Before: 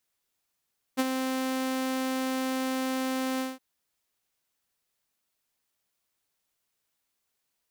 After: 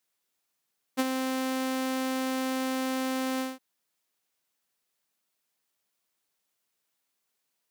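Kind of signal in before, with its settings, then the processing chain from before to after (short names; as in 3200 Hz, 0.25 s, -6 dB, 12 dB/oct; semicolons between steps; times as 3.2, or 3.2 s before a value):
ADSR saw 261 Hz, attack 27 ms, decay 36 ms, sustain -6.5 dB, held 2.43 s, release 0.186 s -18.5 dBFS
HPF 140 Hz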